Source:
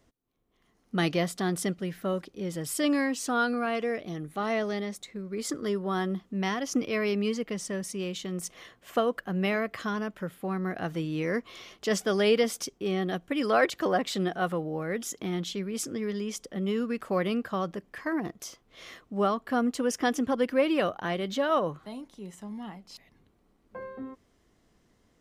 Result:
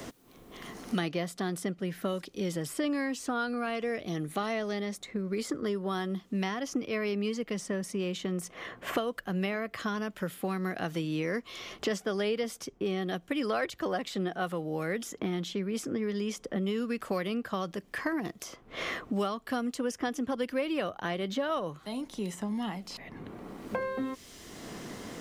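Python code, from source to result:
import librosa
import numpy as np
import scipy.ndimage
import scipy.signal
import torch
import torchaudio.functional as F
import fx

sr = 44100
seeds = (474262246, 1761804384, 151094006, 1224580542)

y = fx.band_squash(x, sr, depth_pct=100)
y = y * librosa.db_to_amplitude(-4.0)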